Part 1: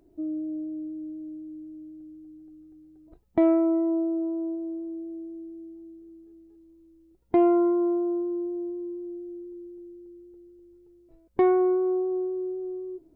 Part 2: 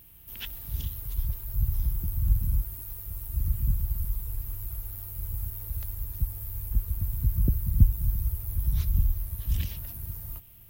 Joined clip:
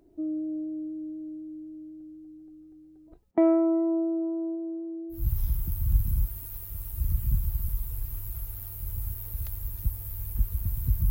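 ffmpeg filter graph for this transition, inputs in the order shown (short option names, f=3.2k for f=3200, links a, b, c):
-filter_complex "[0:a]asettb=1/sr,asplit=3[a][b][c];[a]atrim=end=3.314[d];[b]atrim=start=3.31:end=5.29,asetpts=PTS-STARTPTS,afade=t=in:d=0.004:c=qsin,afade=t=out:st=1.976:d=0.004:c=qsin,highpass=230,lowpass=2.1k[e];[c]atrim=start=5.286[f];[d][e]acrossfade=d=0.004:c1=hsin:c2=qsin[g];[g][f]acrossfade=d=0.004:c1=qsin:c2=hsin,apad=whole_dur=11.1,atrim=end=11.1,atrim=end=5.29,asetpts=PTS-STARTPTS[h];[1:a]atrim=start=1.45:end=7.46,asetpts=PTS-STARTPTS[i];[h][i]acrossfade=d=0.2:c1=tri:c2=tri"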